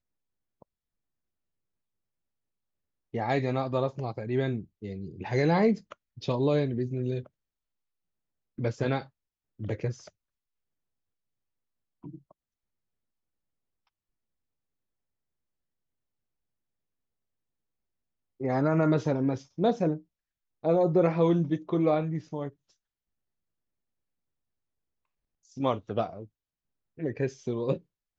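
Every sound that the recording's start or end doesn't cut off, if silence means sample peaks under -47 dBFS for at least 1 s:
3.14–7.27 s
8.58–10.08 s
12.04–12.31 s
18.40–22.50 s

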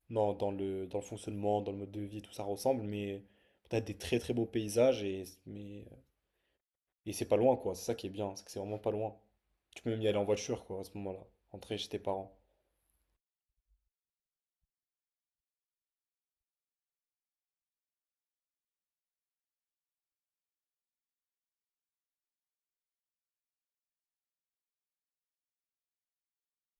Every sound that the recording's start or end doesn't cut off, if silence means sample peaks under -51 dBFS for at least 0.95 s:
7.06–12.28 s

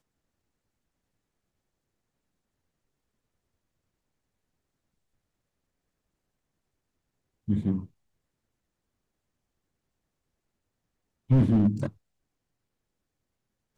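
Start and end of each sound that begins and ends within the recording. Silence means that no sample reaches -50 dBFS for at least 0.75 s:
7.48–7.86 s
11.30–11.91 s

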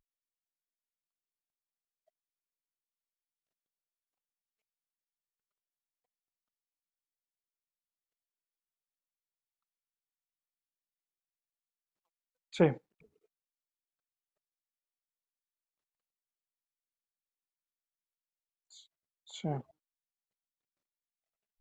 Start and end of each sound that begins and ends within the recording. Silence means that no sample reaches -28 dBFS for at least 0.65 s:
12.60–12.72 s
19.45–19.57 s

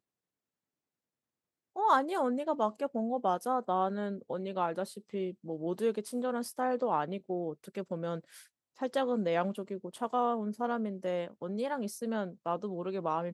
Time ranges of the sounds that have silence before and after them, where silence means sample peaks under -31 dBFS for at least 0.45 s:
1.78–8.16 s

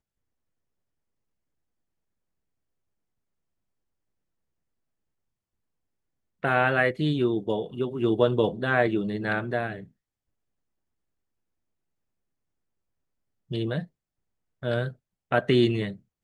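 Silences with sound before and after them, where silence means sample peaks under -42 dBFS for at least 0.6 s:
9.85–13.51 s
13.85–14.63 s

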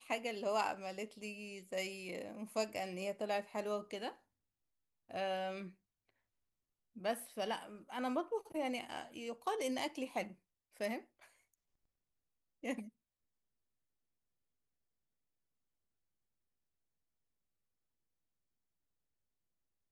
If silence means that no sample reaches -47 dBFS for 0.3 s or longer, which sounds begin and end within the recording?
5.11–5.69 s
6.97–10.32 s
10.80–11.00 s
12.64–12.88 s

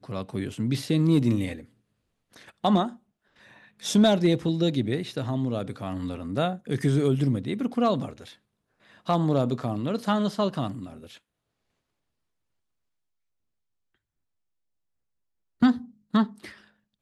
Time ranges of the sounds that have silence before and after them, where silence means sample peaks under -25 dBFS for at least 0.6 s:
2.65–2.87 s
3.85–8.05 s
9.09–10.67 s
15.62–16.24 s

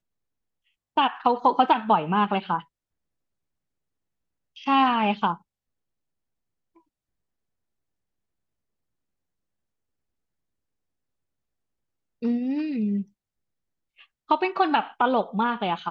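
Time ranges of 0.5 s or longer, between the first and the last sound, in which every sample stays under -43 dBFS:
2.62–4.56 s
5.37–12.22 s
13.03–13.99 s

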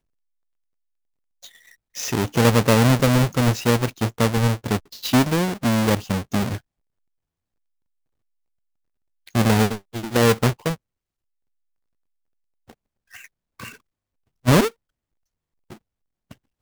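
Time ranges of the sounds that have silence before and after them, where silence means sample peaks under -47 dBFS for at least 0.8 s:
1.43–6.59 s
9.27–10.76 s
12.69–14.70 s

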